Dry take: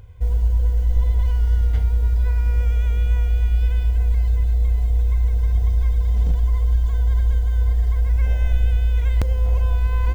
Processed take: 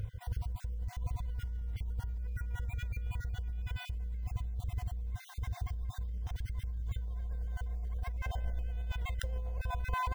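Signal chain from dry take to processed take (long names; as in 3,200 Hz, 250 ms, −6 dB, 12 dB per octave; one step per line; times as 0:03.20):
time-frequency cells dropped at random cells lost 29%
parametric band 110 Hz +6.5 dB 1 octave, from 0:07.08 690 Hz
brickwall limiter −18 dBFS, peak gain reduction 10.5 dB
compressor whose output falls as the input rises −27 dBFS, ratio −0.5
level −6 dB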